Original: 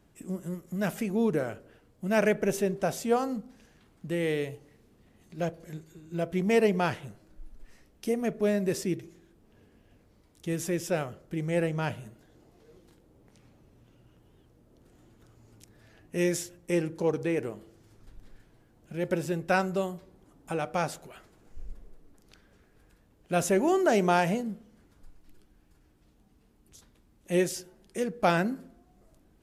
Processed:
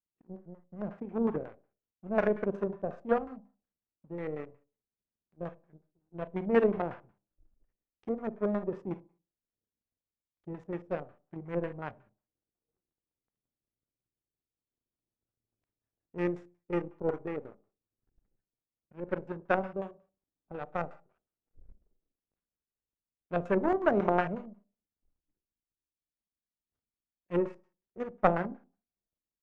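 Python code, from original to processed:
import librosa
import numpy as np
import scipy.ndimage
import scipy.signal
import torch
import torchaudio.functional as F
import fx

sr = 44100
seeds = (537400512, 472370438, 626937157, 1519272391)

y = fx.power_curve(x, sr, exponent=2.0)
y = fx.rev_schroeder(y, sr, rt60_s=0.37, comb_ms=31, drr_db=12.0)
y = fx.filter_lfo_lowpass(y, sr, shape='square', hz=5.5, low_hz=570.0, high_hz=1500.0, q=0.86)
y = y * 10.0 ** (5.0 / 20.0)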